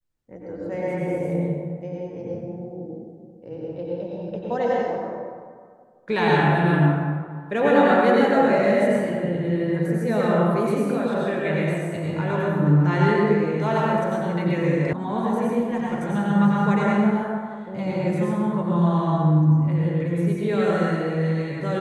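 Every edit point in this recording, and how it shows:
14.93 sound cut off

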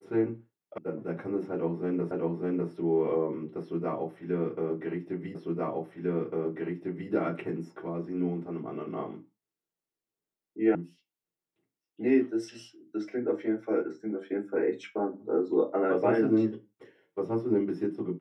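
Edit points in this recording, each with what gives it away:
0.78 sound cut off
2.11 repeat of the last 0.6 s
5.35 repeat of the last 1.75 s
10.75 sound cut off

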